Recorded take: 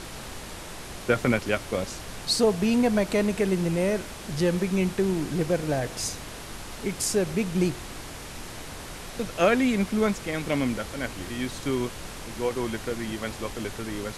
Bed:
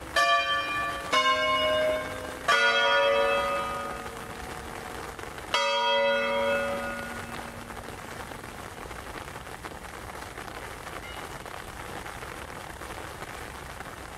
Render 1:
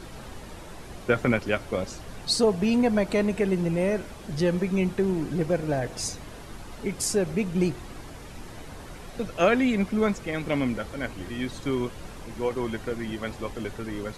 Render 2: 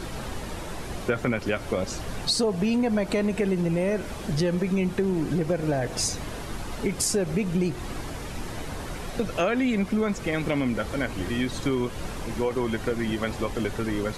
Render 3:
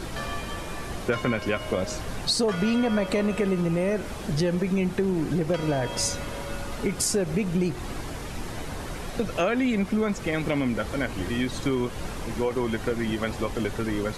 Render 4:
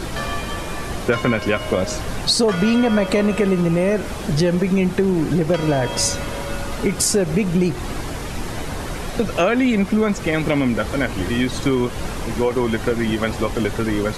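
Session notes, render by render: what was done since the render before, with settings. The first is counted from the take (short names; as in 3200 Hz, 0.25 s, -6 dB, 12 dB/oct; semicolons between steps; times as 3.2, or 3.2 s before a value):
denoiser 9 dB, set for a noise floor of -40 dBFS
in parallel at +2 dB: limiter -19 dBFS, peak gain reduction 10 dB; on the sum: compressor 3:1, threshold -23 dBFS, peak gain reduction 8.5 dB
add bed -13.5 dB
gain +7 dB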